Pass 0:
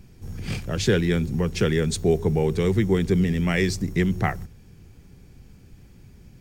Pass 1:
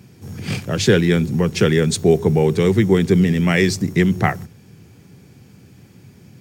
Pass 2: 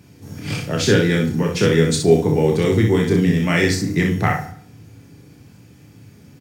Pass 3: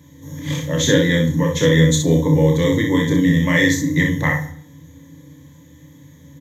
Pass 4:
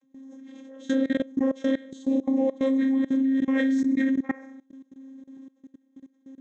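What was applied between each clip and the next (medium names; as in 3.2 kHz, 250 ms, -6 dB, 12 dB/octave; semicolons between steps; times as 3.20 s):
high-pass 100 Hz 24 dB/octave; trim +6.5 dB
on a send: early reflections 29 ms -5 dB, 62 ms -5.5 dB; on the sum: FDN reverb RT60 0.59 s, low-frequency decay 1×, high-frequency decay 0.75×, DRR 6 dB; trim -2.5 dB
rippled EQ curve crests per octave 1.1, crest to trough 18 dB; trim -2.5 dB
vocoder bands 32, saw 267 Hz; level held to a coarse grid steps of 22 dB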